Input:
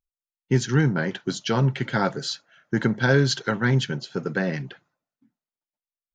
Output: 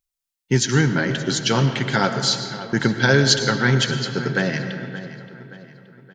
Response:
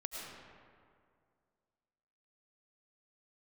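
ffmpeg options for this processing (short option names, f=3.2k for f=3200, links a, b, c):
-filter_complex "[0:a]highshelf=f=2.3k:g=9.5,asplit=2[a][b];[b]adelay=574,lowpass=f=3.8k:p=1,volume=-14.5dB,asplit=2[c][d];[d]adelay=574,lowpass=f=3.8k:p=1,volume=0.48,asplit=2[e][f];[f]adelay=574,lowpass=f=3.8k:p=1,volume=0.48,asplit=2[g][h];[h]adelay=574,lowpass=f=3.8k:p=1,volume=0.48[i];[a][c][e][g][i]amix=inputs=5:normalize=0,asplit=2[j][k];[1:a]atrim=start_sample=2205[l];[k][l]afir=irnorm=-1:irlink=0,volume=-2.5dB[m];[j][m]amix=inputs=2:normalize=0,volume=-1.5dB"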